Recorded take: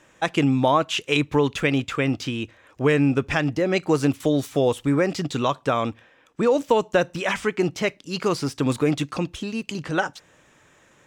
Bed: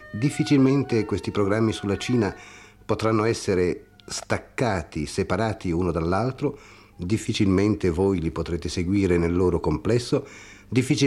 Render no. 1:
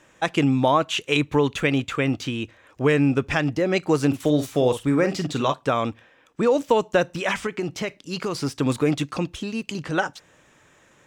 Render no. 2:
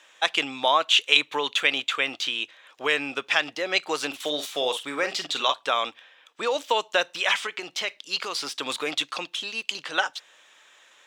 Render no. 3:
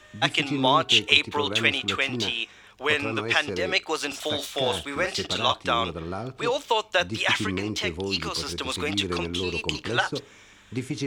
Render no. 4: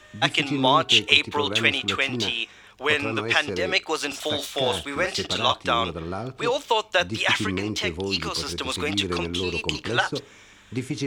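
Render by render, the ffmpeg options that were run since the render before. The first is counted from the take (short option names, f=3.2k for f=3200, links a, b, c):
-filter_complex "[0:a]asettb=1/sr,asplit=3[a][b][c];[a]atrim=end=0.894[d];[b]atrim=start=0.89:end=2.43,asetpts=PTS-STARTPTS,afade=t=in:d=0.004:c=qsin,afade=t=out:st=1.536:d=0.004:c=qsin,bandreject=f=5.1k:w=12[e];[c]atrim=start=2.426[f];[d][e]acrossfade=d=0.004:c1=hsin:c2=qsin[g];[g][f]acrossfade=d=0.004:c1=qsin:c2=hsin,asettb=1/sr,asplit=3[h][i][j];[h]atrim=end=4.074[k];[i]atrim=start=4.07:end=5.54,asetpts=PTS-STARTPTS,afade=t=in:d=0.004:c=qsin,afade=t=out:st=1.466:d=0.004:c=qsin,asplit=2[l][m];[m]adelay=47,volume=-9.5dB[n];[l][n]amix=inputs=2:normalize=0,atrim=end_sample=64827[o];[j]atrim=start=5.536[p];[k][o]acrossfade=d=0.004:c1=hsin:c2=qsin[q];[q][p]acrossfade=d=0.004:c1=qsin:c2=hsin,asettb=1/sr,asplit=3[r][s][t];[r]atrim=end=7.464[u];[s]atrim=start=7.46:end=8.35,asetpts=PTS-STARTPTS,afade=t=in:d=0.004:c=qsin,afade=t=out:st=0.886:d=0.004:c=qsin,acompressor=threshold=-22dB:ratio=6:attack=3.2:release=140:knee=1:detection=peak[v];[t]atrim=start=8.346[w];[u][v]acrossfade=d=0.004:c1=hsin:c2=qsin[x];[x][w]acrossfade=d=0.004:c1=qsin:c2=hsin"
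-af "highpass=720,equalizer=f=3.5k:w=1.6:g=10"
-filter_complex "[1:a]volume=-9.5dB[a];[0:a][a]amix=inputs=2:normalize=0"
-af "volume=1.5dB,alimiter=limit=-1dB:level=0:latency=1"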